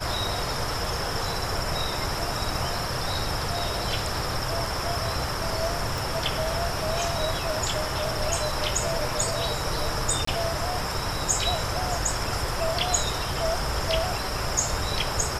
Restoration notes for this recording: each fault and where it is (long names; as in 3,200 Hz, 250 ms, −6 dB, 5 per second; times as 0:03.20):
0:05.98: click
0:10.25–0:10.27: drop-out 24 ms